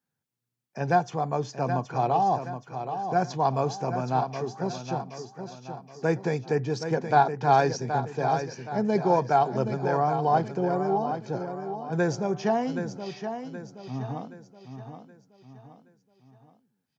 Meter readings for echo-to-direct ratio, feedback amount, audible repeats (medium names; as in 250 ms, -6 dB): -7.5 dB, 42%, 4